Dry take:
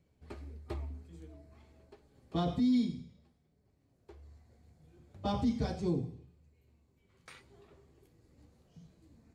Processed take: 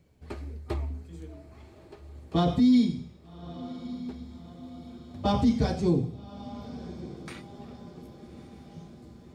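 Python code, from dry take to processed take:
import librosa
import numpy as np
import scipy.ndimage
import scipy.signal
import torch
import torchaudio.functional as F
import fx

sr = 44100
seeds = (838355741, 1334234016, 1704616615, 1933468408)

y = fx.echo_diffused(x, sr, ms=1206, feedback_pct=54, wet_db=-15)
y = y * 10.0 ** (8.0 / 20.0)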